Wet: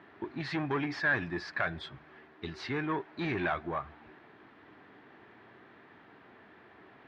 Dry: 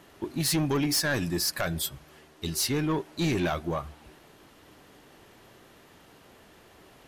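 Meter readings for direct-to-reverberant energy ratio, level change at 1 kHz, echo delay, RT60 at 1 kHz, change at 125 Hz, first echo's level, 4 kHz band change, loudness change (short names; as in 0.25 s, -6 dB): none, -1.0 dB, none, none, -9.0 dB, none, -13.5 dB, -6.0 dB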